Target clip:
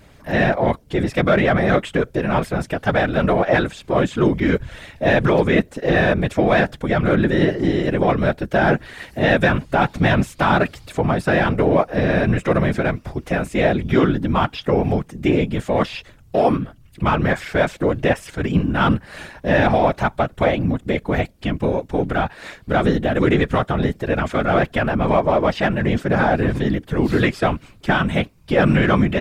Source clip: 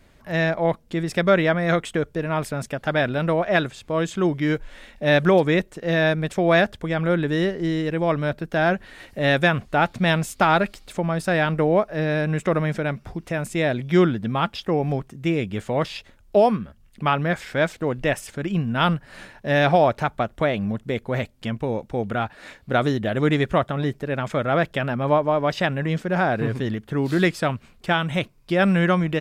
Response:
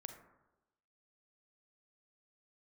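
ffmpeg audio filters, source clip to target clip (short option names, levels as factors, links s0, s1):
-filter_complex "[0:a]acrossover=split=3300[s0][s1];[s1]acompressor=threshold=0.00562:ratio=4:attack=1:release=60[s2];[s0][s2]amix=inputs=2:normalize=0,apsyclip=5.62,asplit=2[s3][s4];[s4]asoftclip=type=tanh:threshold=0.251,volume=0.316[s5];[s3][s5]amix=inputs=2:normalize=0,afftfilt=real='hypot(re,im)*cos(2*PI*random(0))':imag='hypot(re,im)*sin(2*PI*random(1))':win_size=512:overlap=0.75,volume=0.562"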